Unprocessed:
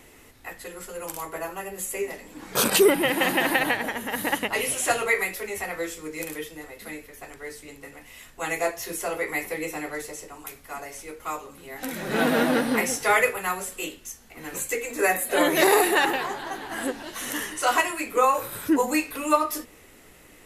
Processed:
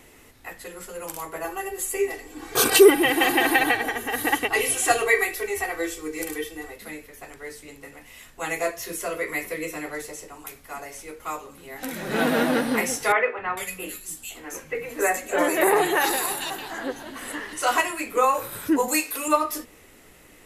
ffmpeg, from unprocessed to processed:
ffmpeg -i in.wav -filter_complex "[0:a]asettb=1/sr,asplit=3[link_01][link_02][link_03];[link_01]atrim=end=1.444[link_04];[link_02]atrim=start=1.44:end=6.76,asetpts=PTS-STARTPTS,afade=type=in:duration=0.004:curve=qsin,afade=type=out:start_time=5.316:duration=0.004:curve=qsin,aecho=1:1:2.6:0.9,atrim=end_sample=234612[link_05];[link_03]atrim=start=6.756[link_06];[link_04][link_05]acrossfade=duration=0.004:curve1=hsin:curve2=qsin[link_07];[link_07][link_06]acrossfade=duration=0.004:curve1=qsin:curve2=hsin,asettb=1/sr,asplit=3[link_08][link_09][link_10];[link_08]atrim=end=8.624[link_11];[link_09]atrim=start=8.62:end=9.86,asetpts=PTS-STARTPTS,afade=type=in:duration=0.004:curve=qsin,afade=type=out:start_time=1.236:duration=0.004:curve=qsin,asuperstop=centerf=820:order=4:qfactor=4.9[link_12];[link_10]atrim=start=9.856[link_13];[link_11][link_12]acrossfade=duration=0.004:curve1=hsin:curve2=qsin[link_14];[link_14][link_13]acrossfade=duration=0.004:curve1=qsin:curve2=hsin,asettb=1/sr,asplit=3[link_15][link_16][link_17];[link_15]atrim=end=13.124[link_18];[link_16]atrim=start=13.12:end=17.53,asetpts=PTS-STARTPTS,afade=type=in:duration=0.004:curve=qsin,afade=type=out:start_time=4.406:duration=0.004:curve=qsin,acrossover=split=210|2800[link_19][link_20][link_21];[link_19]adelay=260[link_22];[link_21]adelay=450[link_23];[link_22][link_20][link_23]amix=inputs=3:normalize=0,atrim=end_sample=194481[link_24];[link_17]atrim=start=17.526[link_25];[link_18][link_24]acrossfade=duration=0.004:curve1=hsin:curve2=qsin[link_26];[link_26][link_25]acrossfade=duration=0.004:curve1=qsin:curve2=hsin,asettb=1/sr,asplit=3[link_27][link_28][link_29];[link_27]atrim=end=18.884[link_30];[link_28]atrim=start=18.88:end=19.28,asetpts=PTS-STARTPTS,afade=type=in:duration=0.004:curve=qsin,afade=type=out:start_time=0.396:duration=0.004:curve=qsin,bass=frequency=250:gain=-10,treble=frequency=4000:gain=9[link_31];[link_29]atrim=start=19.276[link_32];[link_30][link_31]acrossfade=duration=0.004:curve1=hsin:curve2=qsin[link_33];[link_33][link_32]acrossfade=duration=0.004:curve1=qsin:curve2=hsin" out.wav

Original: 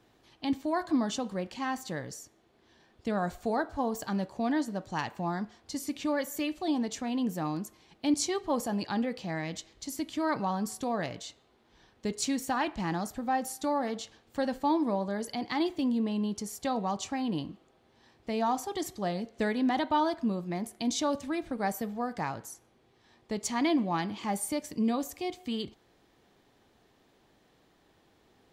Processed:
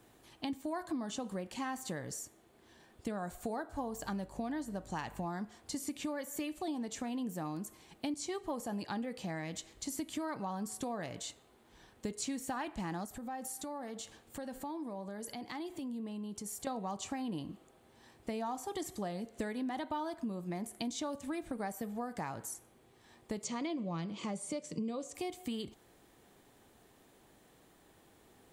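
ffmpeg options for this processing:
ffmpeg -i in.wav -filter_complex "[0:a]asettb=1/sr,asplit=3[link_01][link_02][link_03];[link_01]atrim=end=3.784[link_04];[link_02]atrim=start=3.78:end=5.26,asetpts=PTS-STARTPTS,afade=type=in:duration=0.004:curve=qsin,afade=type=out:start_time=1.476:duration=0.004:curve=qsin,aeval=exprs='val(0)+0.00251*(sin(2*PI*50*n/s)+sin(2*PI*2*50*n/s)/2+sin(2*PI*3*50*n/s)/3+sin(2*PI*4*50*n/s)/4+sin(2*PI*5*50*n/s)/5)':channel_layout=same[link_05];[link_03]atrim=start=5.256[link_06];[link_04][link_05]acrossfade=duration=0.004:curve1=hsin:curve2=qsin[link_07];[link_07][link_06]acrossfade=duration=0.004:curve1=qsin:curve2=hsin,asettb=1/sr,asplit=3[link_08][link_09][link_10];[link_08]atrim=end=13.054[link_11];[link_09]atrim=start=13.05:end=16.67,asetpts=PTS-STARTPTS,afade=type=in:duration=0.004:curve=qsin,afade=type=out:start_time=3.616:duration=0.004:curve=qsin,acompressor=threshold=-44dB:ratio=3:attack=3.2:release=140:knee=1:detection=peak[link_12];[link_10]atrim=start=16.666[link_13];[link_11][link_12]acrossfade=duration=0.004:curve1=hsin:curve2=qsin[link_14];[link_14][link_13]acrossfade=duration=0.004:curve1=qsin:curve2=hsin,asettb=1/sr,asplit=3[link_15][link_16][link_17];[link_15]atrim=end=23.444[link_18];[link_16]atrim=start=23.44:end=25.15,asetpts=PTS-STARTPTS,afade=type=in:duration=0.004:curve=qsin,afade=type=out:start_time=1.706:duration=0.004:curve=qsin,highpass=130,equalizer=frequency=160:width_type=q:width=4:gain=10,equalizer=frequency=270:width_type=q:width=4:gain=-4,equalizer=frequency=520:width_type=q:width=4:gain=7,equalizer=frequency=820:width_type=q:width=4:gain=-9,equalizer=frequency=1700:width_type=q:width=4:gain=-8,lowpass=frequency=7500:width=0.5412,lowpass=frequency=7500:width=1.3066[link_19];[link_17]atrim=start=25.146[link_20];[link_18][link_19]acrossfade=duration=0.004:curve1=hsin:curve2=qsin[link_21];[link_21][link_20]acrossfade=duration=0.004:curve1=qsin:curve2=hsin,acrossover=split=6300[link_22][link_23];[link_23]acompressor=threshold=-52dB:ratio=4:attack=1:release=60[link_24];[link_22][link_24]amix=inputs=2:normalize=0,highshelf=frequency=6700:width_type=q:width=1.5:gain=8,acompressor=threshold=-37dB:ratio=6,volume=1.5dB" out.wav

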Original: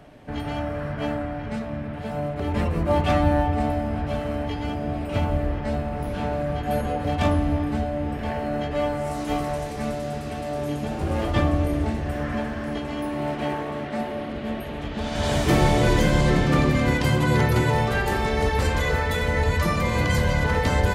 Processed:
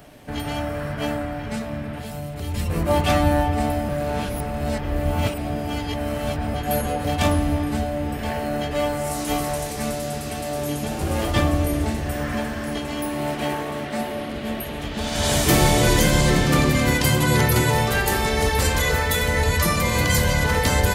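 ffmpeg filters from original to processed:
ffmpeg -i in.wav -filter_complex "[0:a]asettb=1/sr,asplit=3[link_01][link_02][link_03];[link_01]atrim=end=2.004[link_04];[link_02]atrim=start=2:end=2.7,asetpts=PTS-STARTPTS,afade=type=in:duration=0.004:curve=qsin,afade=type=out:start_time=0.696:duration=0.004:curve=qsin,acrossover=split=170|3000[link_05][link_06][link_07];[link_06]acompressor=threshold=-35dB:ratio=6:attack=3.2:release=140:knee=2.83:detection=peak[link_08];[link_05][link_08][link_07]amix=inputs=3:normalize=0[link_09];[link_03]atrim=start=2.696[link_10];[link_04][link_09]acrossfade=duration=0.004:curve1=hsin:curve2=qsin[link_11];[link_11][link_10]acrossfade=duration=0.004:curve1=qsin:curve2=hsin,asplit=3[link_12][link_13][link_14];[link_12]atrim=end=3.892[link_15];[link_13]atrim=start=3.888:end=6.542,asetpts=PTS-STARTPTS,areverse[link_16];[link_14]atrim=start=6.538[link_17];[link_15][link_16]acrossfade=duration=0.004:curve1=hsin:curve2=hsin[link_18];[link_18][link_17]acrossfade=duration=0.004:curve1=hsin:curve2=hsin,aemphasis=mode=production:type=75kf,volume=1dB" out.wav

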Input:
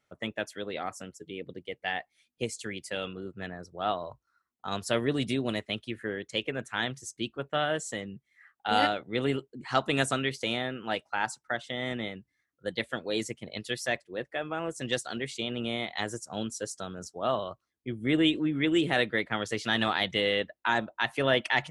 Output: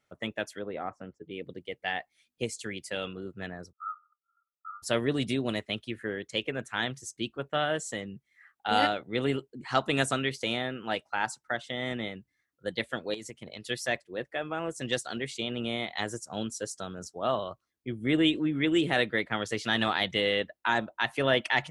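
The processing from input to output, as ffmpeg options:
ffmpeg -i in.wav -filter_complex "[0:a]asettb=1/sr,asplit=3[link_01][link_02][link_03];[link_01]atrim=end=0.594[link_04];[link_02]atrim=start=0.59:end=1.31,asetpts=PTS-STARTPTS,afade=type=in:duration=0.004:curve=qsin,afade=type=out:start_time=0.716:duration=0.004:curve=qsin,lowpass=1500[link_05];[link_03]atrim=start=1.306[link_06];[link_04][link_05]acrossfade=duration=0.004:curve1=hsin:curve2=qsin[link_07];[link_07][link_06]acrossfade=duration=0.004:curve1=qsin:curve2=hsin,asplit=3[link_08][link_09][link_10];[link_08]afade=type=out:start_time=3.71:duration=0.02[link_11];[link_09]asuperpass=centerf=1300:order=20:qfactor=6.1,afade=type=in:start_time=3.71:duration=0.02,afade=type=out:start_time=4.82:duration=0.02[link_12];[link_10]afade=type=in:start_time=4.82:duration=0.02[link_13];[link_11][link_12][link_13]amix=inputs=3:normalize=0,asettb=1/sr,asplit=3[link_14][link_15][link_16];[link_14]atrim=end=13.144[link_17];[link_15]atrim=start=13.14:end=13.65,asetpts=PTS-STARTPTS,afade=type=in:duration=0.004:curve=qsin,afade=type=out:start_time=0.506:duration=0.004:curve=qsin,acompressor=threshold=-37dB:ratio=8:attack=3.2:release=140:knee=1:detection=peak[link_18];[link_16]atrim=start=13.646[link_19];[link_17][link_18]acrossfade=duration=0.004:curve1=hsin:curve2=qsin[link_20];[link_20][link_19]acrossfade=duration=0.004:curve1=qsin:curve2=hsin" out.wav

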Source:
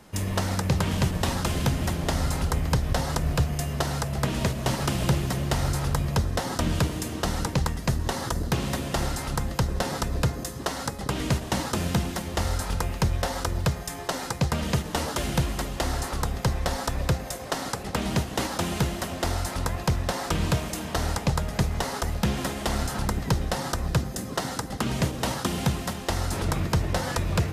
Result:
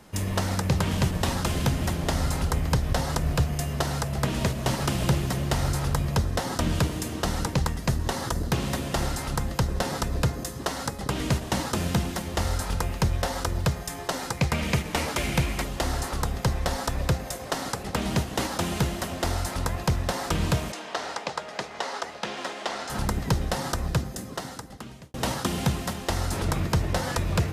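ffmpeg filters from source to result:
ffmpeg -i in.wav -filter_complex "[0:a]asettb=1/sr,asplit=3[link_01][link_02][link_03];[link_01]atrim=end=14.374[link_04];[link_02]atrim=start=14.37:end=15.64,asetpts=PTS-STARTPTS,afade=type=in:duration=0.004:curve=qsin,afade=type=out:start_time=1.266:duration=0.004:curve=qsin,equalizer=frequency=2300:width_type=o:width=0.36:gain=10.5[link_05];[link_03]atrim=start=15.636[link_06];[link_04][link_05]acrossfade=duration=0.004:curve1=hsin:curve2=qsin[link_07];[link_07][link_06]acrossfade=duration=0.004:curve1=qsin:curve2=hsin,asettb=1/sr,asplit=3[link_08][link_09][link_10];[link_08]atrim=end=20.724[link_11];[link_09]atrim=start=20.72:end=22.9,asetpts=PTS-STARTPTS,afade=type=in:duration=0.004:curve=qsin,afade=type=out:start_time=2.176:duration=0.004:curve=qsin,highpass=460,lowpass=5500[link_12];[link_10]atrim=start=22.896[link_13];[link_11][link_12]acrossfade=duration=0.004:curve1=hsin:curve2=qsin[link_14];[link_14][link_13]acrossfade=duration=0.004:curve1=qsin:curve2=hsin,asplit=2[link_15][link_16];[link_15]atrim=end=25.14,asetpts=PTS-STARTPTS,afade=type=out:start_time=23.78:duration=1.36[link_17];[link_16]atrim=start=25.14,asetpts=PTS-STARTPTS,afade=type=in:duration=0.004:curve=hsin[link_18];[link_17][link_18]concat=n=2:v=0:a=1" out.wav

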